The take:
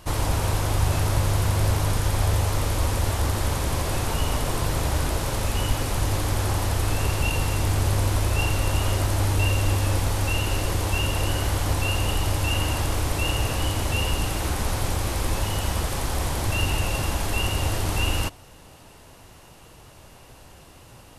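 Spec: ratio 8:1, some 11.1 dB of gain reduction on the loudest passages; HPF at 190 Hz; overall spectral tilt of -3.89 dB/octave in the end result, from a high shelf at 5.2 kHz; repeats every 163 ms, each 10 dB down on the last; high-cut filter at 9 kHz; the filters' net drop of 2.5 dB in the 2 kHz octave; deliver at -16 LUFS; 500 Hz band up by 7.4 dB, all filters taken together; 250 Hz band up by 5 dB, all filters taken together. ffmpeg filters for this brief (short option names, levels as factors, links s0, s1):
-af "highpass=190,lowpass=9000,equalizer=f=250:t=o:g=5.5,equalizer=f=500:t=o:g=8,equalizer=f=2000:t=o:g=-5.5,highshelf=f=5200:g=5.5,acompressor=threshold=0.0224:ratio=8,aecho=1:1:163|326|489|652:0.316|0.101|0.0324|0.0104,volume=9.44"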